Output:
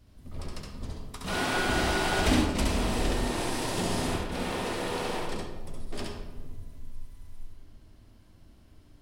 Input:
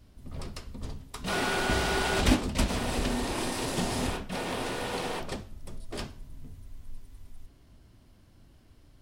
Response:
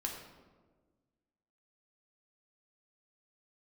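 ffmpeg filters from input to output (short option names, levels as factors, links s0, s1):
-filter_complex "[0:a]asplit=2[s0][s1];[1:a]atrim=start_sample=2205,adelay=68[s2];[s1][s2]afir=irnorm=-1:irlink=0,volume=0.944[s3];[s0][s3]amix=inputs=2:normalize=0,volume=0.75"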